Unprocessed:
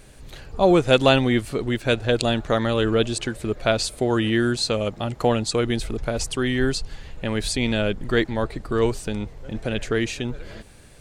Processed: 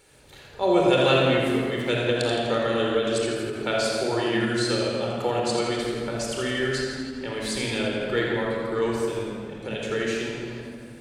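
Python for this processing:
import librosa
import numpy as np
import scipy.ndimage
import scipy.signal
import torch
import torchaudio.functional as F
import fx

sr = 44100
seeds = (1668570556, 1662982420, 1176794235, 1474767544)

y = fx.highpass(x, sr, hz=340.0, slope=6)
y = fx.echo_feedback(y, sr, ms=83, feedback_pct=58, wet_db=-8.0)
y = fx.room_shoebox(y, sr, seeds[0], volume_m3=3800.0, walls='mixed', distance_m=4.3)
y = fx.end_taper(y, sr, db_per_s=100.0)
y = y * librosa.db_to_amplitude(-7.5)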